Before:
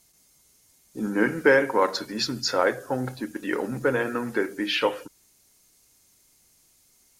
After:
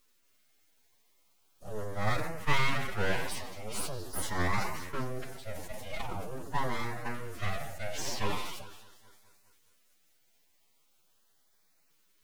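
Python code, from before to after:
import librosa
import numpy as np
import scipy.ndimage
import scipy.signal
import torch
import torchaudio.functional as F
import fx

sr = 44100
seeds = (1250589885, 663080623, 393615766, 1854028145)

p1 = x + fx.echo_heads(x, sr, ms=121, heads='first and second', feedback_pct=49, wet_db=-22.5, dry=0)
p2 = np.abs(p1)
p3 = fx.stretch_vocoder(p2, sr, factor=1.7)
p4 = fx.filter_lfo_notch(p3, sr, shape='saw_up', hz=0.42, low_hz=680.0, high_hz=3500.0, q=2.8)
p5 = fx.sustainer(p4, sr, db_per_s=46.0)
y = p5 * librosa.db_to_amplitude(-6.0)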